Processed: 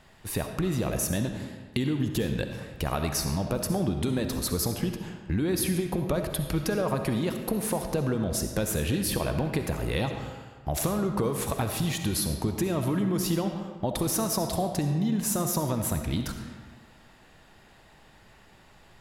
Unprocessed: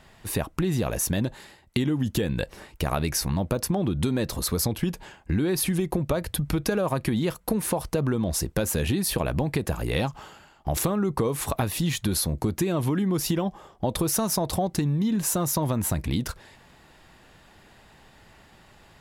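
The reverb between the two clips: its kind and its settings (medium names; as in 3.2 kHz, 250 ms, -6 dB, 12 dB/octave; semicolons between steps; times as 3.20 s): algorithmic reverb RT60 1.5 s, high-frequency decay 0.7×, pre-delay 25 ms, DRR 5.5 dB; trim -3 dB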